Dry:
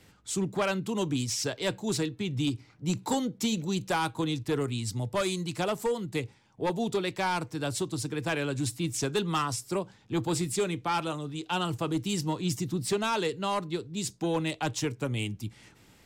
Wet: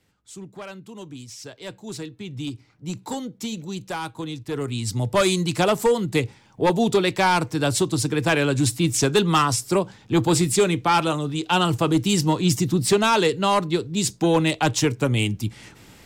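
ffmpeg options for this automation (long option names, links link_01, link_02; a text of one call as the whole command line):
ffmpeg -i in.wav -af "volume=10dB,afade=type=in:start_time=1.33:duration=1.21:silence=0.421697,afade=type=in:start_time=4.46:duration=0.77:silence=0.266073" out.wav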